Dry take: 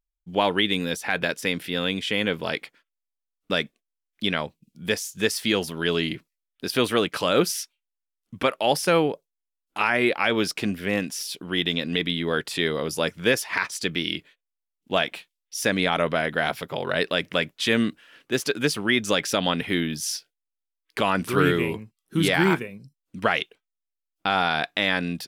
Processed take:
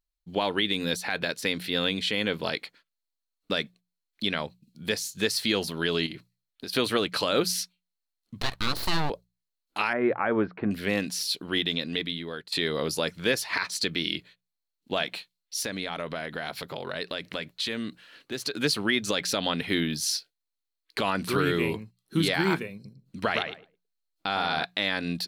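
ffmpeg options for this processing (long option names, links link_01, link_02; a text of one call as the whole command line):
ffmpeg -i in.wav -filter_complex "[0:a]asettb=1/sr,asplit=3[link_01][link_02][link_03];[link_01]atrim=end=6.064[link_04];[link_02]atrim=start=6.06:end=6.73,asetpts=PTS-STARTPTS,afade=type=in:duration=0.004:curve=qsin,afade=type=out:start_time=0.666:duration=0.004:curve=qsin,acompressor=threshold=-32dB:ratio=10:attack=3.2:release=140:knee=1:detection=peak[link_05];[link_03]atrim=start=6.726[link_06];[link_04][link_05]acrossfade=duration=0.004:curve1=hsin:curve2=qsin[link_07];[link_07][link_06]acrossfade=duration=0.004:curve1=qsin:curve2=hsin,asettb=1/sr,asplit=3[link_08][link_09][link_10];[link_08]atrim=end=8.404[link_11];[link_09]atrim=start=8.4:end=9.1,asetpts=PTS-STARTPTS,afade=type=in:duration=0.004:curve=qsin,afade=type=out:start_time=0.696:duration=0.004:curve=qsin,aeval=exprs='abs(val(0))':channel_layout=same[link_12];[link_10]atrim=start=9.096[link_13];[link_11][link_12]acrossfade=duration=0.004:curve1=hsin:curve2=qsin[link_14];[link_14][link_13]acrossfade=duration=0.004:curve1=qsin:curve2=hsin,asettb=1/sr,asplit=3[link_15][link_16][link_17];[link_15]atrim=end=9.934[link_18];[link_16]atrim=start=9.93:end=10.71,asetpts=PTS-STARTPTS,afade=type=in:duration=0.004:curve=qsin,afade=type=out:start_time=0.776:duration=0.004:curve=qsin,lowpass=frequency=1600:width=0.5412,lowpass=frequency=1600:width=1.3066[link_19];[link_17]atrim=start=10.706[link_20];[link_18][link_19]acrossfade=duration=0.004:curve1=hsin:curve2=qsin[link_21];[link_21][link_20]acrossfade=duration=0.004:curve1=qsin:curve2=hsin,asettb=1/sr,asplit=3[link_22][link_23][link_24];[link_22]atrim=end=15.624[link_25];[link_23]atrim=start=15.62:end=18.54,asetpts=PTS-STARTPTS,afade=type=in:duration=0.004:curve=qsin,afade=type=out:start_time=2.916:duration=0.004:curve=qsin,acompressor=threshold=-32dB:ratio=2.5:attack=3.2:release=140:knee=1:detection=peak[link_26];[link_24]atrim=start=18.536[link_27];[link_25][link_26]acrossfade=duration=0.004:curve1=hsin:curve2=qsin[link_28];[link_28][link_27]acrossfade=duration=0.004:curve1=qsin:curve2=hsin,asettb=1/sr,asplit=3[link_29][link_30][link_31];[link_29]atrim=end=22.744[link_32];[link_30]atrim=start=22.74:end=24.65,asetpts=PTS-STARTPTS,afade=type=in:duration=0.004:curve=qsin,afade=type=out:start_time=1.906:duration=0.004:curve=qsin,asplit=2[link_33][link_34];[link_34]adelay=111,lowpass=frequency=1400:poles=1,volume=-4dB,asplit=2[link_35][link_36];[link_36]adelay=111,lowpass=frequency=1400:poles=1,volume=0.17,asplit=2[link_37][link_38];[link_38]adelay=111,lowpass=frequency=1400:poles=1,volume=0.17[link_39];[link_33][link_35][link_37][link_39]amix=inputs=4:normalize=0,atrim=end_sample=84231[link_40];[link_31]atrim=start=24.646[link_41];[link_32][link_40]acrossfade=duration=0.004:curve1=hsin:curve2=qsin[link_42];[link_42][link_41]acrossfade=duration=0.004:curve1=qsin:curve2=hsin,asplit=2[link_43][link_44];[link_43]atrim=end=12.52,asetpts=PTS-STARTPTS,afade=type=out:start_time=11.54:duration=0.98:silence=0.112202[link_45];[link_44]atrim=start=12.52,asetpts=PTS-STARTPTS,afade=type=in:duration=0.004:curve=hsin:silence=0.112202[link_46];[link_45][link_46]concat=n=2:v=0:a=1,equalizer=frequency=4200:width=5.9:gain=13,bandreject=frequency=60:width_type=h:width=6,bandreject=frequency=120:width_type=h:width=6,bandreject=frequency=180:width_type=h:width=6,alimiter=limit=-12dB:level=0:latency=1:release=158,volume=-1dB" out.wav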